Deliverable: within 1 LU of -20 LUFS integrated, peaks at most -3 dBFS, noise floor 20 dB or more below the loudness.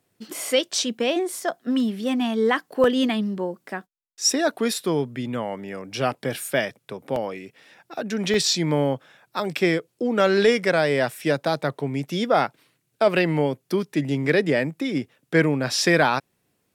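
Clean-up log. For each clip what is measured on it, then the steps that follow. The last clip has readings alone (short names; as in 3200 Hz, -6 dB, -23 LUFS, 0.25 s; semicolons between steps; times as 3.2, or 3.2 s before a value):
dropouts 3; longest dropout 1.7 ms; loudness -23.0 LUFS; peak -7.5 dBFS; loudness target -20.0 LUFS
-> interpolate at 2.84/7.16/8.34, 1.7 ms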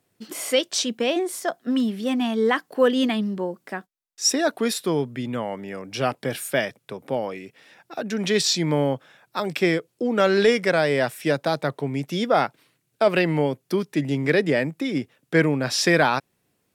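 dropouts 0; loudness -23.0 LUFS; peak -7.5 dBFS; loudness target -20.0 LUFS
-> gain +3 dB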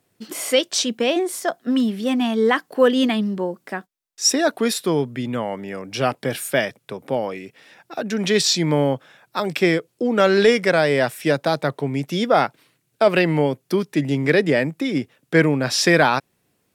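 loudness -20.0 LUFS; peak -4.5 dBFS; noise floor -69 dBFS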